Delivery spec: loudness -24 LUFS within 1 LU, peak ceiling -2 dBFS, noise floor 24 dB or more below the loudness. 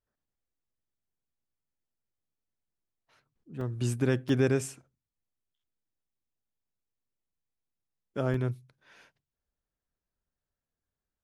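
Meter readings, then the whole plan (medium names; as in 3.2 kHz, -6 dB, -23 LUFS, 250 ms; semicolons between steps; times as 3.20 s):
dropouts 3; longest dropout 2.9 ms; loudness -30.5 LUFS; peak level -13.5 dBFS; loudness target -24.0 LUFS
-> interpolate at 3.61/4.29/8.34 s, 2.9 ms; trim +6.5 dB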